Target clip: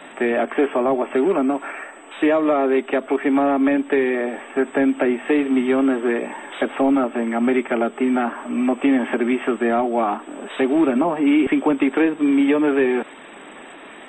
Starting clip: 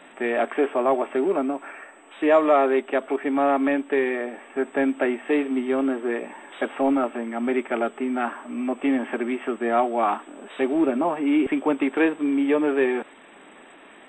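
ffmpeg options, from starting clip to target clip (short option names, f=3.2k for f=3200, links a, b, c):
-filter_complex "[0:a]acrossover=split=320|740[a][b][c];[a]acompressor=threshold=-25dB:ratio=4[d];[b]acompressor=threshold=-32dB:ratio=4[e];[c]acompressor=threshold=-34dB:ratio=4[f];[d][e][f]amix=inputs=3:normalize=0,volume=8.5dB" -ar 44100 -c:a libmp3lame -b:a 32k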